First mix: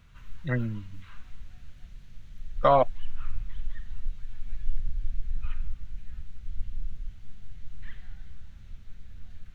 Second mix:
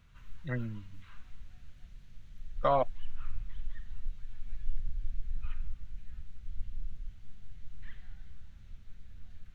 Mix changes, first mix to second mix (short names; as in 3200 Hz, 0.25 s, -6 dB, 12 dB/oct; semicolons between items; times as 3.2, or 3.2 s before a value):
speech -7.0 dB; background -5.0 dB